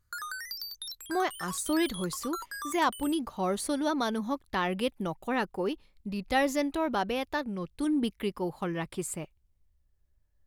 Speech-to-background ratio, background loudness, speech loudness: 8.0 dB, -39.5 LUFS, -31.5 LUFS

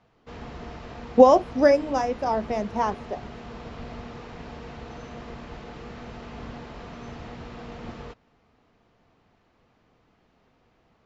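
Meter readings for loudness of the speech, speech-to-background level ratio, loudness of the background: -21.0 LUFS, 19.5 dB, -40.5 LUFS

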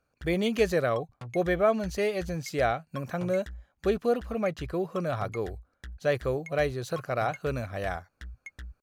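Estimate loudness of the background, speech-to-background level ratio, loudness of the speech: -46.0 LUFS, 16.5 dB, -29.5 LUFS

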